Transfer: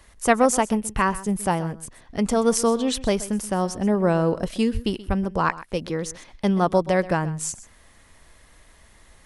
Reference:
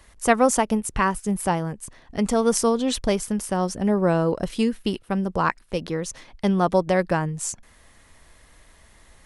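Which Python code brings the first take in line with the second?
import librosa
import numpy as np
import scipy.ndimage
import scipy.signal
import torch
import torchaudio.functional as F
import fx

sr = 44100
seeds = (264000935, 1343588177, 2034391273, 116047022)

y = fx.highpass(x, sr, hz=140.0, slope=24, at=(4.73, 4.85), fade=0.02)
y = fx.highpass(y, sr, hz=140.0, slope=24, at=(5.07, 5.19), fade=0.02)
y = fx.fix_echo_inverse(y, sr, delay_ms=128, level_db=-17.0)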